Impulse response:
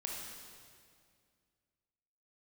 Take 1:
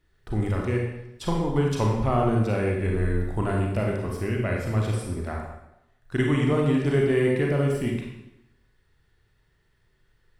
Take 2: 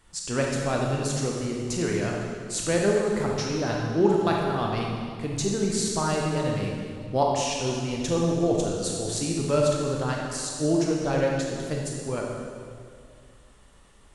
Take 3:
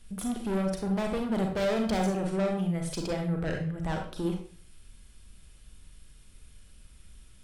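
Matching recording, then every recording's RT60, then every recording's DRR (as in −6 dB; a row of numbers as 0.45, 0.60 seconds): 2; 0.85, 2.1, 0.45 seconds; −1.5, −2.0, 2.0 decibels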